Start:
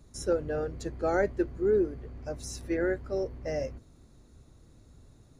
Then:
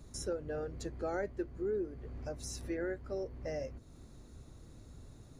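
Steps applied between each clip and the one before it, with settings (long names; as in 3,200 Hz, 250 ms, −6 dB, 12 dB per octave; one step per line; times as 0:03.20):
downward compressor 2 to 1, threshold −46 dBFS, peak gain reduction 13.5 dB
level +2.5 dB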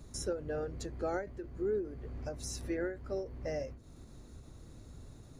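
every ending faded ahead of time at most 130 dB per second
level +2 dB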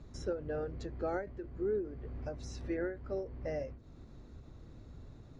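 high-frequency loss of the air 160 metres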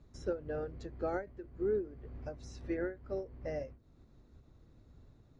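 expander for the loud parts 1.5 to 1, over −52 dBFS
level +1.5 dB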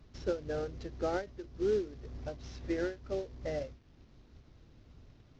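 variable-slope delta modulation 32 kbit/s
level +2.5 dB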